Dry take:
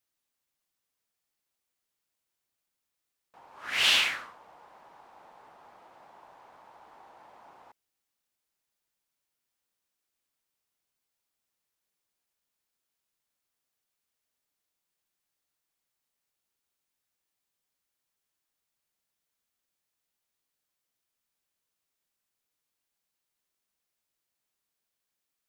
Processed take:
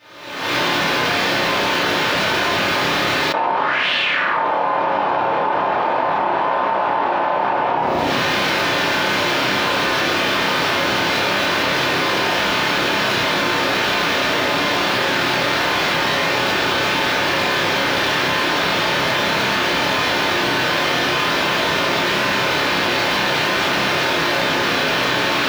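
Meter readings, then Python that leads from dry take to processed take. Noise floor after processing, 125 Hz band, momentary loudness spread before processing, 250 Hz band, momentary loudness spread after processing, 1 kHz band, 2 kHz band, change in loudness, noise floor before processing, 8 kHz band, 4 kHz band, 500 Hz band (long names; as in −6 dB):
−19 dBFS, can't be measured, 18 LU, +40.5 dB, 2 LU, +33.0 dB, +23.0 dB, +7.5 dB, −85 dBFS, +18.0 dB, +18.0 dB, +38.0 dB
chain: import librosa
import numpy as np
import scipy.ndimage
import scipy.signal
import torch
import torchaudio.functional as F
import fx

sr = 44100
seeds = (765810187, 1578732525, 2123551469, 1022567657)

y = fx.recorder_agc(x, sr, target_db=-18.5, rise_db_per_s=54.0, max_gain_db=30)
y = 10.0 ** (-26.0 / 20.0) * np.tanh(y / 10.0 ** (-26.0 / 20.0))
y = scipy.signal.sosfilt(scipy.signal.bessel(2, 180.0, 'highpass', norm='mag', fs=sr, output='sos'), y)
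y = fx.air_absorb(y, sr, metres=270.0)
y = fx.doubler(y, sr, ms=31.0, db=-5)
y = fx.room_shoebox(y, sr, seeds[0], volume_m3=140.0, walls='mixed', distance_m=2.6)
y = fx.env_flatten(y, sr, amount_pct=100)
y = y * 10.0 ** (-1.5 / 20.0)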